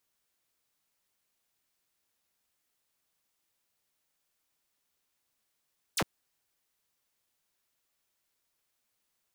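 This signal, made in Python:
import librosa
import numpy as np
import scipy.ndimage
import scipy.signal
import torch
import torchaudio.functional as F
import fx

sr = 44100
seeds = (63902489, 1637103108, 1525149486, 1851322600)

y = fx.laser_zap(sr, level_db=-23.5, start_hz=11000.0, end_hz=85.0, length_s=0.06, wave='saw')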